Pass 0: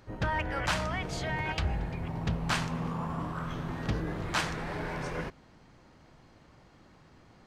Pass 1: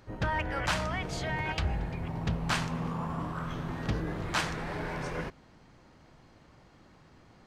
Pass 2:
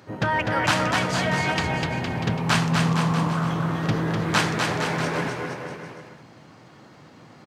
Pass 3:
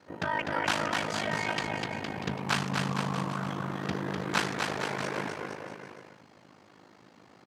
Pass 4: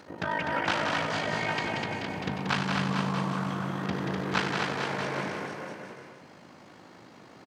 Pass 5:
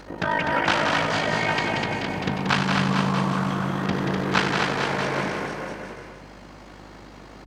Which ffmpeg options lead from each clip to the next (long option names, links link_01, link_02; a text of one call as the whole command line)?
ffmpeg -i in.wav -af anull out.wav
ffmpeg -i in.wav -filter_complex "[0:a]highpass=frequency=110:width=0.5412,highpass=frequency=110:width=1.3066,asplit=2[link_01][link_02];[link_02]aecho=0:1:250|462.5|643.1|796.7|927.2:0.631|0.398|0.251|0.158|0.1[link_03];[link_01][link_03]amix=inputs=2:normalize=0,volume=8dB" out.wav
ffmpeg -i in.wav -af "highpass=180,aeval=exprs='val(0)*sin(2*PI*26*n/s)':channel_layout=same,volume=-4dB" out.wav
ffmpeg -i in.wav -filter_complex "[0:a]acompressor=mode=upward:threshold=-45dB:ratio=2.5,asplit=2[link_01][link_02];[link_02]aecho=0:1:94|183:0.299|0.562[link_03];[link_01][link_03]amix=inputs=2:normalize=0,acrossover=split=5700[link_04][link_05];[link_05]acompressor=threshold=-56dB:ratio=4:attack=1:release=60[link_06];[link_04][link_06]amix=inputs=2:normalize=0" out.wav
ffmpeg -i in.wav -af "aeval=exprs='val(0)+0.00178*(sin(2*PI*50*n/s)+sin(2*PI*2*50*n/s)/2+sin(2*PI*3*50*n/s)/3+sin(2*PI*4*50*n/s)/4+sin(2*PI*5*50*n/s)/5)':channel_layout=same,volume=6.5dB" out.wav